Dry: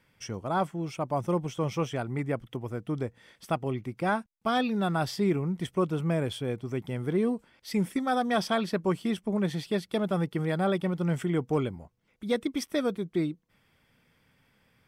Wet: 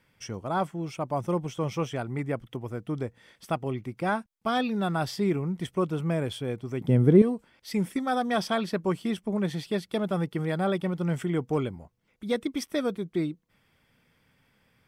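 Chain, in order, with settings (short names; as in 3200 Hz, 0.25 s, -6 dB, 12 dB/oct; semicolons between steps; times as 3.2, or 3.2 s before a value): 6.81–7.22 graphic EQ 125/250/500 Hz +11/+9/+8 dB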